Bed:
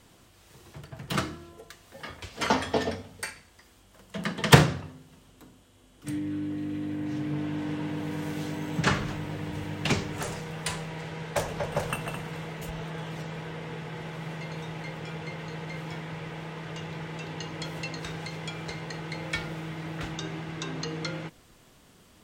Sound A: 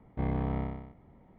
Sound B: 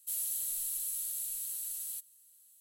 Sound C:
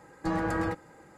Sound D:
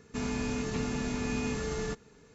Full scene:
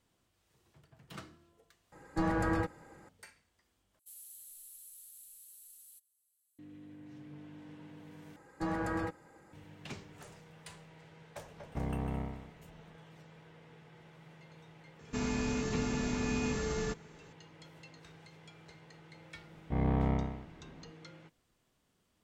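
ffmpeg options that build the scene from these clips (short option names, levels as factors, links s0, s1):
-filter_complex "[3:a]asplit=2[s0][s1];[1:a]asplit=2[s2][s3];[0:a]volume=0.112[s4];[s0]lowshelf=f=78:g=7.5[s5];[2:a]aresample=32000,aresample=44100[s6];[s2]alimiter=level_in=1.06:limit=0.0631:level=0:latency=1:release=71,volume=0.944[s7];[s3]dynaudnorm=f=170:g=3:m=2.11[s8];[s4]asplit=4[s9][s10][s11][s12];[s9]atrim=end=1.924[s13];[s5]atrim=end=1.17,asetpts=PTS-STARTPTS,volume=0.75[s14];[s10]atrim=start=3.086:end=3.994[s15];[s6]atrim=end=2.6,asetpts=PTS-STARTPTS,volume=0.15[s16];[s11]atrim=start=6.586:end=8.364[s17];[s1]atrim=end=1.17,asetpts=PTS-STARTPTS,volume=0.531[s18];[s12]atrim=start=9.526[s19];[s7]atrim=end=1.38,asetpts=PTS-STARTPTS,volume=0.668,afade=t=in:d=0.004:c=hsin,afade=t=out:st=1.376:d=0.004:c=hsin,adelay=11580[s20];[4:a]atrim=end=2.34,asetpts=PTS-STARTPTS,volume=0.891,afade=t=in:d=0.004:c=hsin,afade=t=out:st=2.336:d=0.004:c=hsin,adelay=14990[s21];[s8]atrim=end=1.38,asetpts=PTS-STARTPTS,volume=0.596,afade=t=in:d=0.004:c=hsin,afade=t=out:st=1.376:d=0.004:c=hsin,adelay=19530[s22];[s13][s14]acrossfade=d=0.004:c1=hsin:c2=hsin[s23];[s23][s15]acrossfade=d=0.004:c1=hsin:c2=hsin[s24];[s24][s16]acrossfade=d=0.004:c1=hsin:c2=hsin[s25];[s25][s17]acrossfade=d=0.004:c1=hsin:c2=hsin[s26];[s26][s18]acrossfade=d=0.004:c1=hsin:c2=hsin[s27];[s27][s19]acrossfade=d=0.004:c1=hsin:c2=hsin[s28];[s28][s20][s21][s22]amix=inputs=4:normalize=0"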